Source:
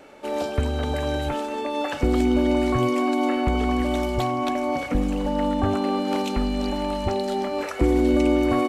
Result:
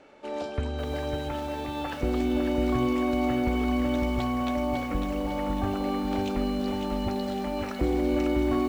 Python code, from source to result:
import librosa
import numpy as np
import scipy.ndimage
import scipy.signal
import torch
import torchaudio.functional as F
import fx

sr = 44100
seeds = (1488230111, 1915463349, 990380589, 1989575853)

y = scipy.signal.sosfilt(scipy.signal.butter(2, 6300.0, 'lowpass', fs=sr, output='sos'), x)
y = fx.echo_crushed(y, sr, ms=551, feedback_pct=55, bits=7, wet_db=-5)
y = y * 10.0 ** (-6.5 / 20.0)